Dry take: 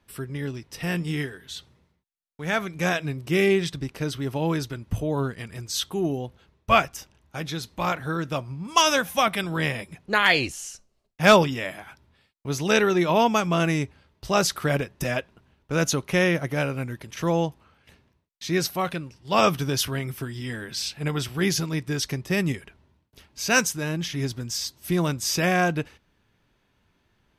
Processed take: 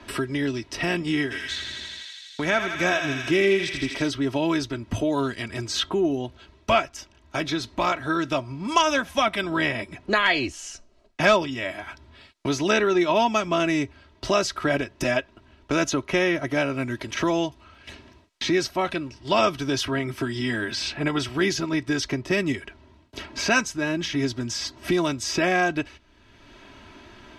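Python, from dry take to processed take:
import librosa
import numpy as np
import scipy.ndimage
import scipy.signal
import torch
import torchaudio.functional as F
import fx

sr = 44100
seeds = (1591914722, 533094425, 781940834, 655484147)

y = fx.echo_thinned(x, sr, ms=82, feedback_pct=77, hz=940.0, wet_db=-5.5, at=(1.3, 4.07), fade=0.02)
y = scipy.signal.sosfilt(scipy.signal.butter(2, 6200.0, 'lowpass', fs=sr, output='sos'), y)
y = y + 0.64 * np.pad(y, (int(3.1 * sr / 1000.0), 0))[:len(y)]
y = fx.band_squash(y, sr, depth_pct=70)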